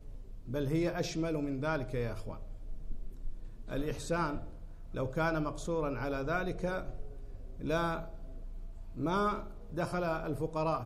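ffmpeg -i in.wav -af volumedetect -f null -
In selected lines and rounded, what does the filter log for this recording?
mean_volume: -35.1 dB
max_volume: -19.3 dB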